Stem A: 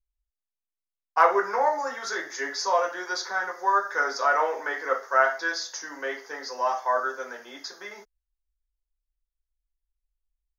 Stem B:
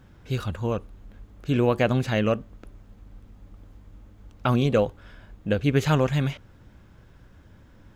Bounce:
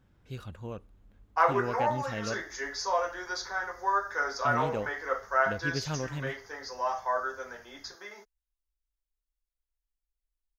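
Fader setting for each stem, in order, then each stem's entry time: −5.0, −13.0 decibels; 0.20, 0.00 seconds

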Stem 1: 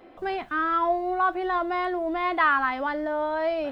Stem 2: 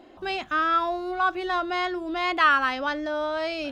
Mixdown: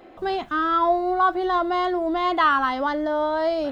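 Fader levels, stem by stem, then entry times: +2.5, −5.5 decibels; 0.00, 0.00 seconds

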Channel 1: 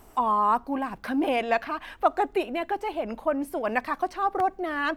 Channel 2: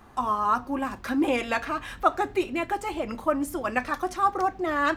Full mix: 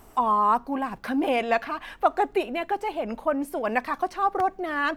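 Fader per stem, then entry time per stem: +1.0, −14.5 decibels; 0.00, 0.00 seconds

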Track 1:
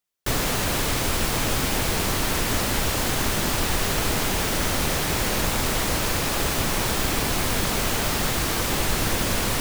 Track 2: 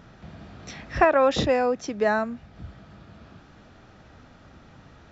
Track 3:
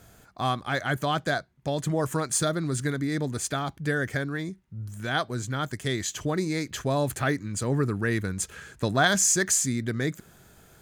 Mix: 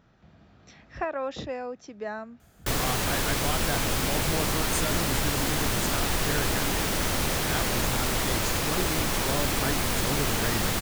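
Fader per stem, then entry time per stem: −3.0, −12.0, −6.5 decibels; 2.40, 0.00, 2.40 seconds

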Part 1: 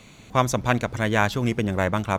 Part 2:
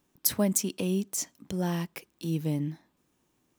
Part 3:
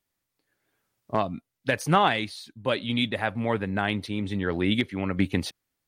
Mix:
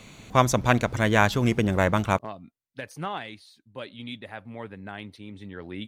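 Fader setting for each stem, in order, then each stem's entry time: +1.0 dB, muted, −12.0 dB; 0.00 s, muted, 1.10 s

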